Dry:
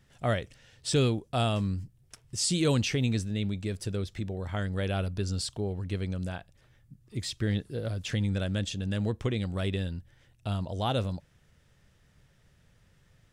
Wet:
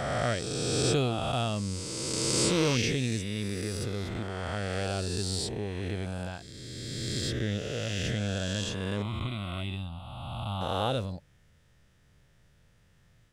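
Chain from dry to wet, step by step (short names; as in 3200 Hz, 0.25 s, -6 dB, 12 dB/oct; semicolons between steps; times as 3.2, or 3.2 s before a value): spectral swells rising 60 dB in 2.69 s; 9.02–10.61 fixed phaser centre 1700 Hz, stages 6; gain -4 dB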